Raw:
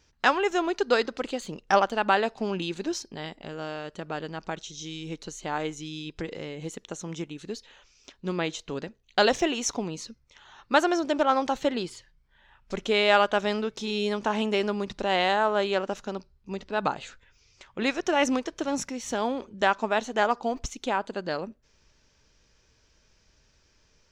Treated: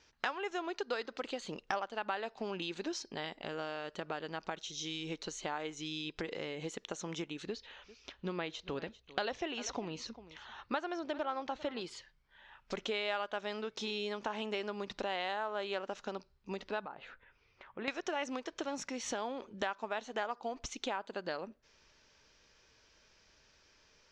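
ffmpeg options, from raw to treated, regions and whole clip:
-filter_complex "[0:a]asettb=1/sr,asplit=3[a][b][c];[a]atrim=end=7.464[d];[b]atrim=start=7.46:end=11.81,asetpts=PTS-STARTPTS,afade=t=in:d=0.004:c=qsin,afade=t=out:st=4.346:d=0.004:c=qsin,lowpass=5k,equalizer=f=62:w=0.93:g=12.5,aecho=1:1:396:0.0794,atrim=end_sample=191835[e];[c]atrim=start=11.806[f];[d][e]acrossfade=d=0.004:c1=hsin:c2=qsin[g];[g][f]acrossfade=d=0.004:c1=qsin:c2=hsin,asettb=1/sr,asplit=3[h][i][j];[h]atrim=end=16.854[k];[i]atrim=start=16.85:end=17.88,asetpts=PTS-STARTPTS,afade=t=in:d=0.004:c=qsin,afade=t=out:st=1.026:d=0.004:c=qsin,lowpass=1.9k,acompressor=threshold=-51dB:ratio=1.5:attack=3.2:release=140:knee=1:detection=peak[l];[j]atrim=start=17.876[m];[k][l]acrossfade=d=0.004:c1=hsin:c2=qsin[n];[n][m]acrossfade=d=0.004:c1=qsin:c2=hsin,lowpass=5.5k,lowshelf=f=250:g=-12,acompressor=threshold=-38dB:ratio=4,volume=2dB"

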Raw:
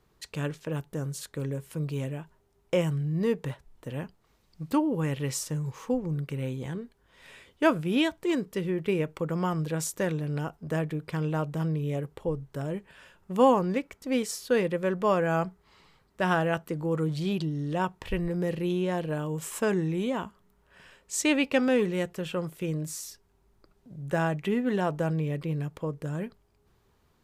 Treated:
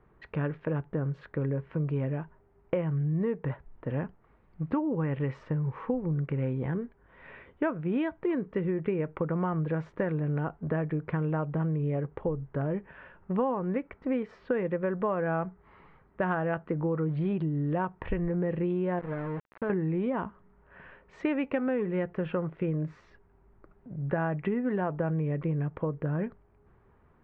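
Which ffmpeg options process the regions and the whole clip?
-filter_complex "[0:a]asettb=1/sr,asplit=3[a][b][c];[a]atrim=end=18.994[d];[b]atrim=start=18.99:end=19.7,asetpts=PTS-STARTPTS,afade=t=in:d=0.004:c=qsin,afade=t=out:st=0.706:d=0.004:c=qsin,lowpass=f=2.3k:w=0.5412,lowpass=f=2.3k:w=1.3066,acompressor=threshold=-40dB:ratio=2:attack=3.2:release=140:knee=1:detection=peak,aeval=exprs='val(0)*gte(abs(val(0)),0.01)':c=same[e];[c]atrim=start=19.696[f];[d][e]acrossfade=d=0.004:c1=hsin:c2=qsin[g];[g][f]acrossfade=d=0.004:c1=qsin:c2=hsin,lowpass=f=2k:w=0.5412,lowpass=f=2k:w=1.3066,acompressor=threshold=-31dB:ratio=6,volume=5dB"

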